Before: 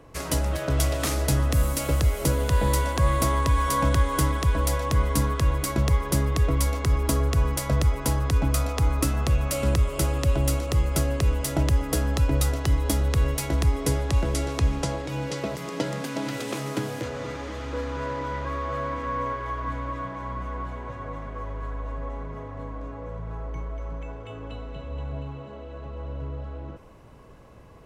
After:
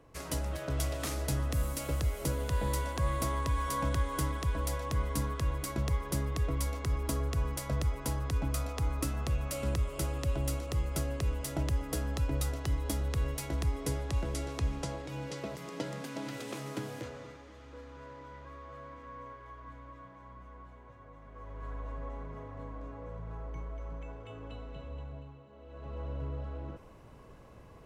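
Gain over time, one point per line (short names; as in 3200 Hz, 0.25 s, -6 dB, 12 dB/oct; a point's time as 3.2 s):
17.02 s -9.5 dB
17.44 s -18 dB
21.17 s -18 dB
21.71 s -7.5 dB
24.86 s -7.5 dB
25.48 s -16.5 dB
25.93 s -4 dB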